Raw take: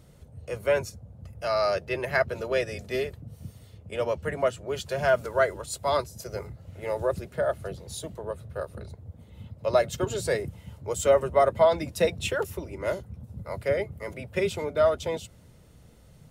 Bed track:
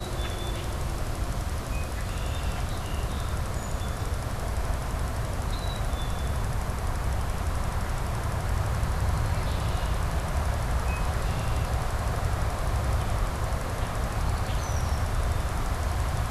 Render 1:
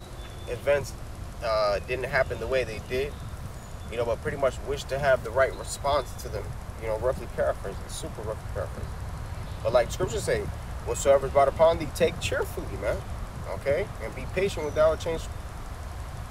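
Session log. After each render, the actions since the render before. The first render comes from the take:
mix in bed track −9.5 dB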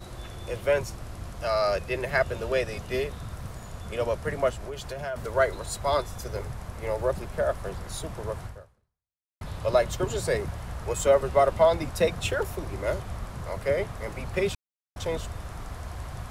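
0:04.50–0:05.16: downward compressor 3 to 1, threshold −33 dBFS
0:08.45–0:09.41: fade out exponential
0:14.55–0:14.96: silence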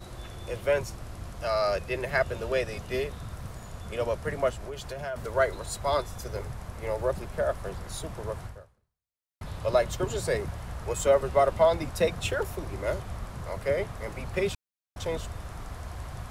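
level −1.5 dB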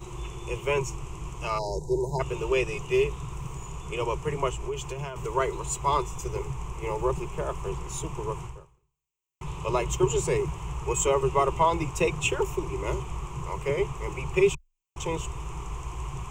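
0:01.59–0:02.20: time-frequency box erased 1,000–3,700 Hz
EQ curve with evenly spaced ripples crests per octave 0.71, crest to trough 17 dB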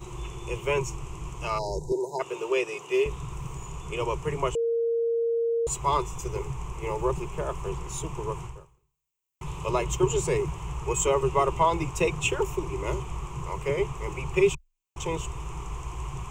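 0:01.92–0:03.06: Chebyshev high-pass filter 380 Hz
0:04.55–0:05.67: beep over 463 Hz −22.5 dBFS
0:08.56–0:09.71: high-shelf EQ 10,000 Hz +5.5 dB

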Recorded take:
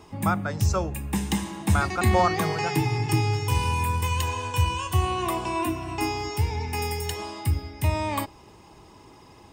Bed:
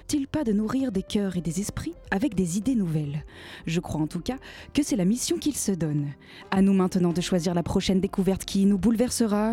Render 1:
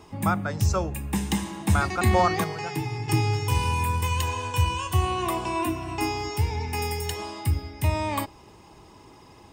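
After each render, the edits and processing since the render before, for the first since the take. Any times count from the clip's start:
0:02.44–0:03.08: clip gain −5.5 dB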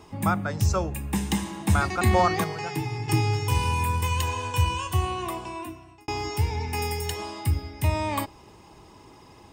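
0:04.75–0:06.08: fade out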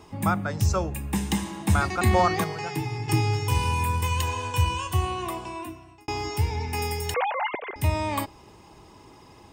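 0:07.14–0:07.76: three sine waves on the formant tracks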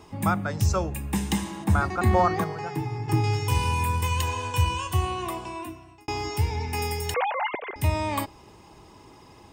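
0:01.64–0:03.24: flat-topped bell 5,400 Hz −8 dB 3 octaves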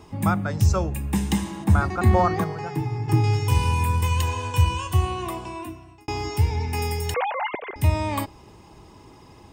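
low-shelf EQ 280 Hz +5 dB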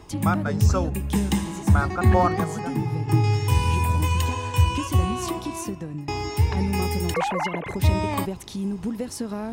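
mix in bed −7 dB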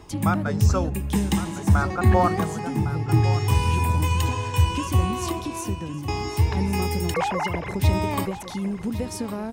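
single-tap delay 1,107 ms −13 dB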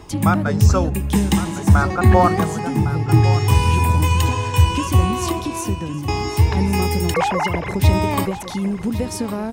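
level +5.5 dB
brickwall limiter −2 dBFS, peak gain reduction 1.5 dB

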